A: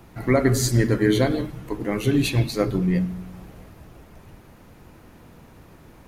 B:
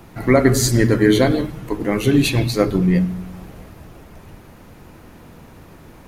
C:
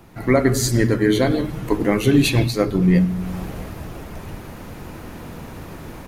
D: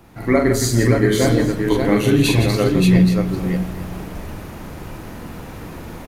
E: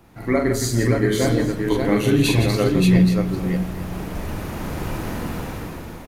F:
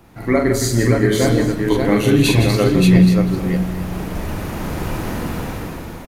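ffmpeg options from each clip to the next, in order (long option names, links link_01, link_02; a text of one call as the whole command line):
ffmpeg -i in.wav -af "bandreject=frequency=60:width_type=h:width=6,bandreject=frequency=120:width_type=h:width=6,volume=5.5dB" out.wav
ffmpeg -i in.wav -af "dynaudnorm=framelen=110:gausssize=3:maxgain=11.5dB,volume=-4dB" out.wav
ffmpeg -i in.wav -af "aecho=1:1:43|165|581|844:0.631|0.355|0.631|0.15,volume=-1dB" out.wav
ffmpeg -i in.wav -af "dynaudnorm=framelen=320:gausssize=5:maxgain=10.5dB,volume=-4dB" out.wav
ffmpeg -i in.wav -af "aecho=1:1:198:0.15,volume=3.5dB" out.wav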